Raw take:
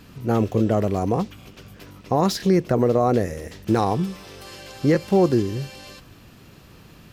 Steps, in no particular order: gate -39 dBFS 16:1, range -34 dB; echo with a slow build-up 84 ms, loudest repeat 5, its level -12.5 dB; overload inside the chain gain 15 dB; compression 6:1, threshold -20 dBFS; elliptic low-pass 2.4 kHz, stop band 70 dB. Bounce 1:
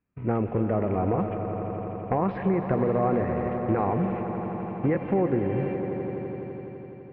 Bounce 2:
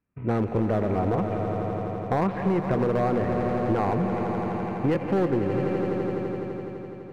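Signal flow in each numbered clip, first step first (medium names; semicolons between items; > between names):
compression > overload inside the chain > elliptic low-pass > gate > echo with a slow build-up; gate > elliptic low-pass > overload inside the chain > echo with a slow build-up > compression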